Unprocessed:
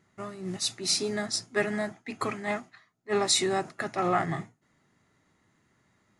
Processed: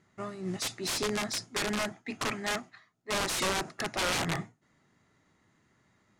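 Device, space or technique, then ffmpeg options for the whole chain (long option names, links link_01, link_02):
overflowing digital effects unit: -af "aeval=exprs='(mod(15*val(0)+1,2)-1)/15':channel_layout=same,lowpass=9100"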